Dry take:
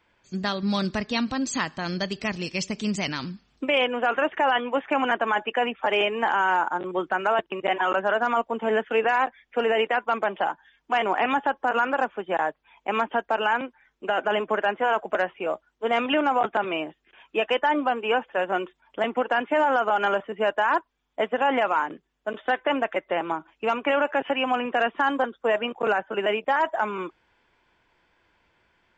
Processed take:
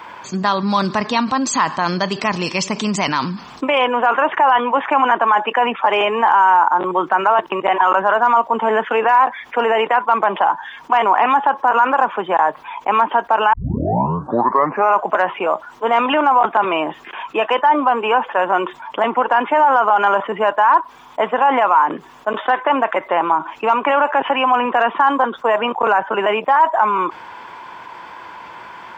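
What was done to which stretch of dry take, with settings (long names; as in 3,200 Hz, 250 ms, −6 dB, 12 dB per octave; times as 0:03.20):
0:13.53: tape start 1.54 s
whole clip: high-pass filter 130 Hz; parametric band 1,000 Hz +14.5 dB 0.78 octaves; envelope flattener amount 50%; level −2.5 dB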